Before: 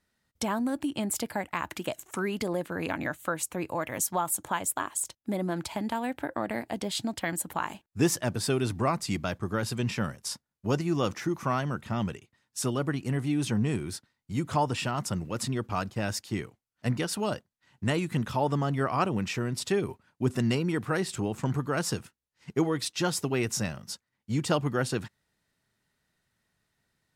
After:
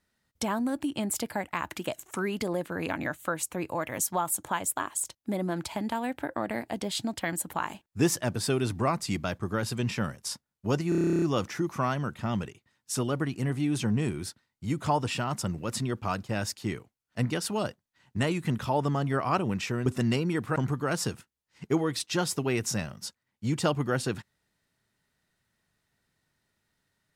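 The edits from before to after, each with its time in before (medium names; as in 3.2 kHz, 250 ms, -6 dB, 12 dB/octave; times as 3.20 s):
10.89 s: stutter 0.03 s, 12 plays
19.53–20.25 s: delete
20.95–21.42 s: delete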